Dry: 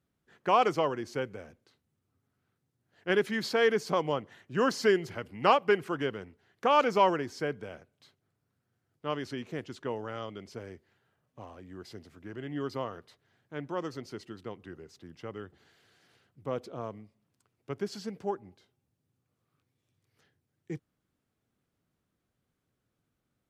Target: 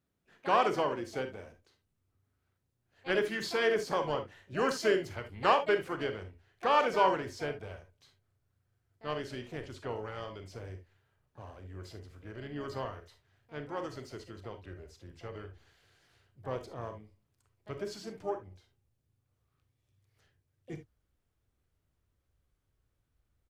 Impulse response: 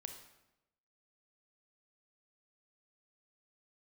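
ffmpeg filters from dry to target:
-filter_complex "[0:a]asplit=3[a][b][c];[b]asetrate=35002,aresample=44100,atempo=1.25992,volume=-17dB[d];[c]asetrate=66075,aresample=44100,atempo=0.66742,volume=-12dB[e];[a][d][e]amix=inputs=3:normalize=0,asubboost=boost=10.5:cutoff=58[f];[1:a]atrim=start_sample=2205,atrim=end_sample=3528[g];[f][g]afir=irnorm=-1:irlink=0,volume=2dB"

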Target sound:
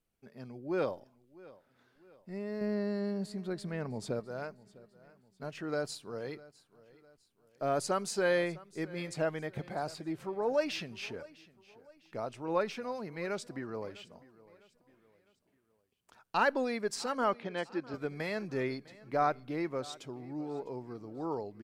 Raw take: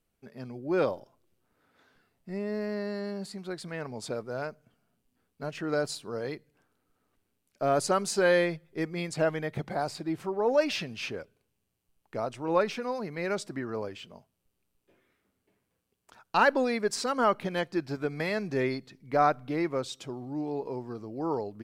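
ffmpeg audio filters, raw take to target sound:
-filter_complex "[0:a]asettb=1/sr,asplit=3[a][b][c];[a]atrim=end=2.614[d];[b]atrim=start=2.61:end=4.2,asetpts=PTS-STARTPTS,afade=t=in:d=0.004:c=qsin,afade=t=out:st=1.586:d=0.004:c=qsin,lowshelf=f=450:g=9[e];[c]atrim=start=4.196[f];[d][e]acrossfade=d=0.004:c1=hsin:c2=qsin[g];[g][f]acrossfade=d=0.004:c1=qsin:c2=hsin,asettb=1/sr,asplit=3[h][i][j];[h]atrim=end=17.344[k];[i]atrim=start=17.34:end=17.94,asetpts=PTS-STARTPTS,afade=t=in:d=0.004:c=qsin,afade=t=out:st=0.596:d=0.004:c=qsin,highpass=190,lowpass=4.3k[l];[j]atrim=start=17.936[m];[k][l]acrossfade=d=0.004:c1=hsin:c2=qsin[n];[n][m]acrossfade=d=0.004:c1=qsin:c2=hsin,aecho=1:1:654|1308|1962:0.0891|0.0383|0.0165,volume=-5.5dB"

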